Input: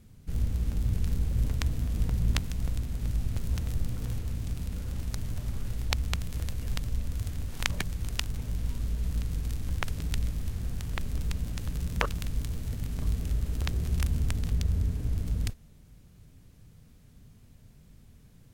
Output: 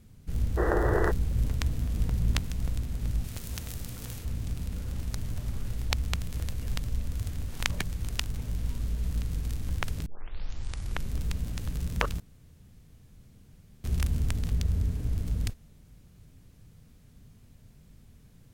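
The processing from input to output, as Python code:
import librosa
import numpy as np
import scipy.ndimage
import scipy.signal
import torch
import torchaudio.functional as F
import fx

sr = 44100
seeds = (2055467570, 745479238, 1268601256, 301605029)

y = fx.spec_box(x, sr, start_s=0.58, length_s=0.53, low_hz=310.0, high_hz=2000.0, gain_db=25)
y = fx.tilt_eq(y, sr, slope=2.0, at=(3.24, 4.25))
y = fx.edit(y, sr, fx.tape_start(start_s=10.06, length_s=1.07),
    fx.room_tone_fill(start_s=12.2, length_s=1.64), tone=tone)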